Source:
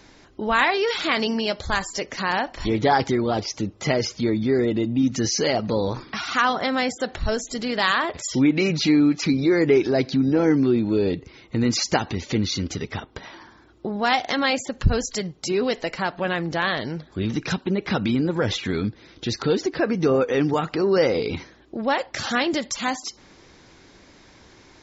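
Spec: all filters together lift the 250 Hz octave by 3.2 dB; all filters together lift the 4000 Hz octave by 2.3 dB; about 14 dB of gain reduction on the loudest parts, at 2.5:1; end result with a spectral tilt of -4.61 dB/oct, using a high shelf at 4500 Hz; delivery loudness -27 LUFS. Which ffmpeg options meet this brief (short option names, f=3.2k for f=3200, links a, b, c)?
-af "equalizer=f=250:t=o:g=4,equalizer=f=4k:t=o:g=5,highshelf=f=4.5k:g=-4,acompressor=threshold=-33dB:ratio=2.5,volume=5dB"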